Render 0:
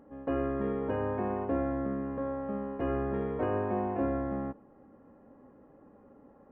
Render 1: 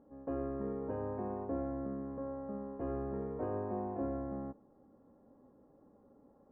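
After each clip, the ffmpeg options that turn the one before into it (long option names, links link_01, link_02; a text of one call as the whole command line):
ffmpeg -i in.wav -af "lowpass=1100,volume=-6.5dB" out.wav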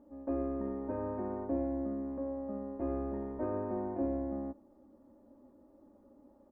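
ffmpeg -i in.wav -af "aecho=1:1:3.3:0.8" out.wav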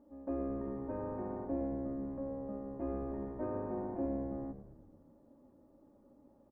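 ffmpeg -i in.wav -filter_complex "[0:a]asplit=9[link_01][link_02][link_03][link_04][link_05][link_06][link_07][link_08][link_09];[link_02]adelay=107,afreqshift=-73,volume=-12.5dB[link_10];[link_03]adelay=214,afreqshift=-146,volume=-16.4dB[link_11];[link_04]adelay=321,afreqshift=-219,volume=-20.3dB[link_12];[link_05]adelay=428,afreqshift=-292,volume=-24.1dB[link_13];[link_06]adelay=535,afreqshift=-365,volume=-28dB[link_14];[link_07]adelay=642,afreqshift=-438,volume=-31.9dB[link_15];[link_08]adelay=749,afreqshift=-511,volume=-35.8dB[link_16];[link_09]adelay=856,afreqshift=-584,volume=-39.6dB[link_17];[link_01][link_10][link_11][link_12][link_13][link_14][link_15][link_16][link_17]amix=inputs=9:normalize=0,volume=-3dB" out.wav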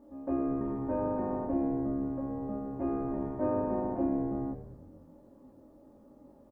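ffmpeg -i in.wav -filter_complex "[0:a]asplit=2[link_01][link_02];[link_02]adelay=23,volume=-2dB[link_03];[link_01][link_03]amix=inputs=2:normalize=0,volume=5dB" out.wav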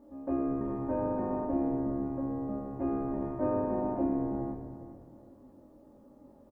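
ffmpeg -i in.wav -af "aecho=1:1:406|812|1218:0.224|0.0604|0.0163" out.wav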